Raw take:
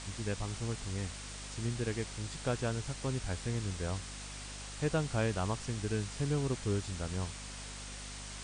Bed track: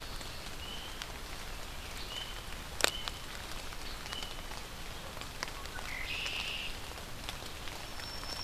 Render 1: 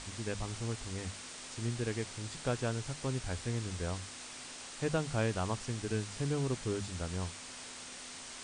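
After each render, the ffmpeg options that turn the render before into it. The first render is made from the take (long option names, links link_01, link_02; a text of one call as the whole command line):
ffmpeg -i in.wav -af "bandreject=frequency=50:width_type=h:width=6,bandreject=frequency=100:width_type=h:width=6,bandreject=frequency=150:width_type=h:width=6,bandreject=frequency=200:width_type=h:width=6" out.wav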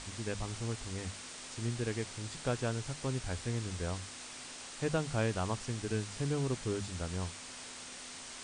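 ffmpeg -i in.wav -af anull out.wav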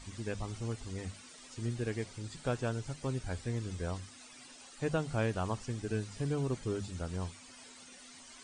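ffmpeg -i in.wav -af "afftdn=noise_reduction=13:noise_floor=-47" out.wav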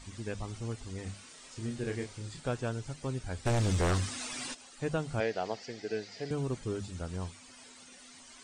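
ffmpeg -i in.wav -filter_complex "[0:a]asettb=1/sr,asplit=3[link_01][link_02][link_03];[link_01]atrim=end=1.034[link_04];[link_02]atrim=start=1.03:end=2.4,asetpts=PTS-STARTPTS,afade=type=in:duration=0.004:curve=qsin,afade=type=out:start_time=1.366:duration=0.004:curve=qsin,asplit=2[link_05][link_06];[link_06]adelay=30,volume=-5dB[link_07];[link_05][link_07]amix=inputs=2:normalize=0,atrim=end_sample=60417[link_08];[link_03]atrim=start=2.396[link_09];[link_04][link_08]acrossfade=duration=0.004:curve1=hsin:curve2=qsin[link_10];[link_10][link_09]acrossfade=duration=0.004:curve1=qsin:curve2=hsin,asplit=3[link_11][link_12][link_13];[link_11]afade=type=out:start_time=3.45:duration=0.02[link_14];[link_12]aeval=exprs='0.0668*sin(PI/2*3.16*val(0)/0.0668)':channel_layout=same,afade=type=in:start_time=3.45:duration=0.02,afade=type=out:start_time=4.53:duration=0.02[link_15];[link_13]afade=type=in:start_time=4.53:duration=0.02[link_16];[link_14][link_15][link_16]amix=inputs=3:normalize=0,asettb=1/sr,asplit=3[link_17][link_18][link_19];[link_17]atrim=end=5.204[link_20];[link_18]atrim=start=5.2:end=6.31,asetpts=PTS-STARTPTS,afade=type=in:duration=0.004:curve=qsin,afade=type=out:start_time=1.106:duration=0.004:curve=qsin,highpass=260,equalizer=frequency=270:width_type=q:width=4:gain=-3,equalizer=frequency=460:width_type=q:width=4:gain=5,equalizer=frequency=700:width_type=q:width=4:gain=7,equalizer=frequency=1100:width_type=q:width=4:gain=-10,equalizer=frequency=2000:width_type=q:width=4:gain=8,equalizer=frequency=4700:width_type=q:width=4:gain=9,lowpass=frequency=6400:width=0.5412,lowpass=frequency=6400:width=1.3066[link_21];[link_19]atrim=start=6.306[link_22];[link_20][link_21]acrossfade=duration=0.004:curve1=hsin:curve2=qsin[link_23];[link_23][link_22]acrossfade=duration=0.004:curve1=qsin:curve2=hsin" out.wav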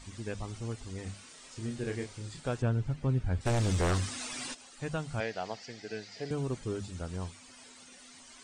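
ffmpeg -i in.wav -filter_complex "[0:a]asettb=1/sr,asplit=3[link_01][link_02][link_03];[link_01]atrim=end=2.624[link_04];[link_02]atrim=start=2.62:end=3.41,asetpts=PTS-STARTPTS,afade=type=in:duration=0.004:curve=qsin,afade=type=out:start_time=0.786:duration=0.004:curve=qsin,bass=frequency=250:gain=9,treble=frequency=4000:gain=-13[link_05];[link_03]atrim=start=3.406[link_06];[link_04][link_05]acrossfade=duration=0.004:curve1=hsin:curve2=qsin[link_07];[link_07][link_06]acrossfade=duration=0.004:curve1=qsin:curve2=hsin,asettb=1/sr,asplit=3[link_08][link_09][link_10];[link_08]atrim=end=4.824[link_11];[link_09]atrim=start=4.82:end=6.16,asetpts=PTS-STARTPTS,afade=type=in:duration=0.004:curve=qsin,afade=type=out:start_time=1.336:duration=0.004:curve=qsin,equalizer=frequency=400:width=1.1:gain=-6[link_12];[link_10]atrim=start=6.156[link_13];[link_11][link_12]acrossfade=duration=0.004:curve1=hsin:curve2=qsin[link_14];[link_14][link_13]acrossfade=duration=0.004:curve1=qsin:curve2=hsin" out.wav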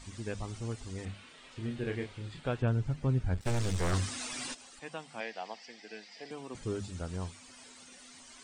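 ffmpeg -i in.wav -filter_complex "[0:a]asettb=1/sr,asplit=3[link_01][link_02][link_03];[link_01]atrim=end=1.054[link_04];[link_02]atrim=start=1.05:end=2.68,asetpts=PTS-STARTPTS,afade=type=in:duration=0.004:curve=qsin,afade=type=out:start_time=1.626:duration=0.004:curve=qsin,highshelf=frequency=4400:width_type=q:width=1.5:gain=-9.5[link_05];[link_03]atrim=start=2.676[link_06];[link_04][link_05]acrossfade=duration=0.004:curve1=hsin:curve2=qsin[link_07];[link_07][link_06]acrossfade=duration=0.004:curve1=qsin:curve2=hsin,asettb=1/sr,asplit=3[link_08][link_09][link_10];[link_08]atrim=end=3.344[link_11];[link_09]atrim=start=3.34:end=3.93,asetpts=PTS-STARTPTS,afade=type=in:duration=0.004:curve=qsin,afade=type=out:start_time=0.586:duration=0.004:curve=qsin,aeval=exprs='if(lt(val(0),0),0.251*val(0),val(0))':channel_layout=same[link_12];[link_10]atrim=start=3.926[link_13];[link_11][link_12]acrossfade=duration=0.004:curve1=hsin:curve2=qsin[link_14];[link_14][link_13]acrossfade=duration=0.004:curve1=qsin:curve2=hsin,asettb=1/sr,asplit=3[link_15][link_16][link_17];[link_15]atrim=end=4.794[link_18];[link_16]atrim=start=4.79:end=6.55,asetpts=PTS-STARTPTS,afade=type=in:duration=0.004:curve=qsin,afade=type=out:start_time=1.756:duration=0.004:curve=qsin,highpass=frequency=250:width=0.5412,highpass=frequency=250:width=1.3066,equalizer=frequency=290:width_type=q:width=4:gain=-7,equalizer=frequency=410:width_type=q:width=4:gain=-9,equalizer=frequency=600:width_type=q:width=4:gain=-6,equalizer=frequency=1400:width_type=q:width=4:gain=-8,equalizer=frequency=4200:width_type=q:width=4:gain=-5,equalizer=frequency=6600:width_type=q:width=4:gain=-9,lowpass=frequency=8400:width=0.5412,lowpass=frequency=8400:width=1.3066[link_19];[link_17]atrim=start=6.546[link_20];[link_18][link_19]acrossfade=duration=0.004:curve1=hsin:curve2=qsin[link_21];[link_21][link_20]acrossfade=duration=0.004:curve1=qsin:curve2=hsin" out.wav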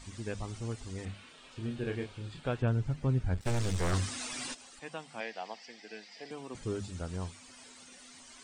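ffmpeg -i in.wav -filter_complex "[0:a]asettb=1/sr,asplit=3[link_01][link_02][link_03];[link_01]atrim=end=1.314[link_04];[link_02]atrim=start=1.31:end=2.43,asetpts=PTS-STARTPTS,afade=type=in:duration=0.004:curve=qsin,afade=type=out:start_time=1.116:duration=0.004:curve=qsin,bandreject=frequency=2000:width=7.2[link_05];[link_03]atrim=start=2.426[link_06];[link_04][link_05]acrossfade=duration=0.004:curve1=hsin:curve2=qsin[link_07];[link_07][link_06]acrossfade=duration=0.004:curve1=qsin:curve2=hsin" out.wav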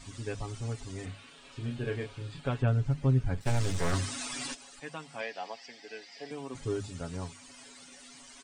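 ffmpeg -i in.wav -af "aecho=1:1:7.2:0.67" out.wav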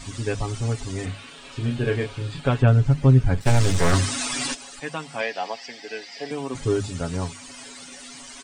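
ffmpeg -i in.wav -af "volume=10.5dB" out.wav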